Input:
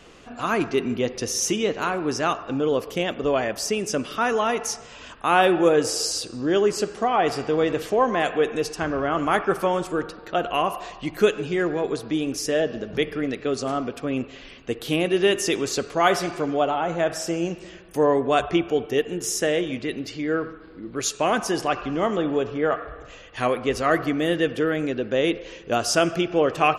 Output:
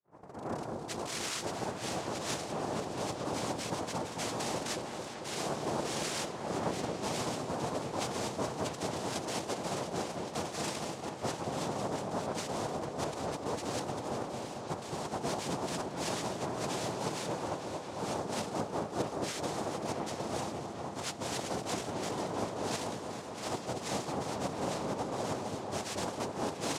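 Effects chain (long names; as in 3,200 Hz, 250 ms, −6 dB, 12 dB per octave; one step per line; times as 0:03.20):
turntable start at the beginning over 1.96 s
mains-hum notches 50/100/150/200/250/300/350 Hz
reversed playback
downward compressor, threshold −28 dBFS, peak gain reduction 15 dB
reversed playback
cochlear-implant simulation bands 2
echo whose low-pass opens from repeat to repeat 224 ms, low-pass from 750 Hz, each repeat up 1 octave, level −3 dB
level −6.5 dB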